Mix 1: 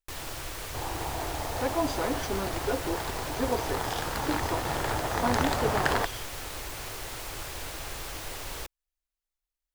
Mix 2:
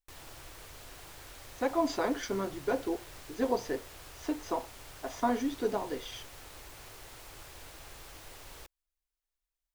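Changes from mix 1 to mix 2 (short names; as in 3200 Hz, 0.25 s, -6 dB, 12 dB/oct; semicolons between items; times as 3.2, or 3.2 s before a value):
first sound -11.5 dB; second sound: muted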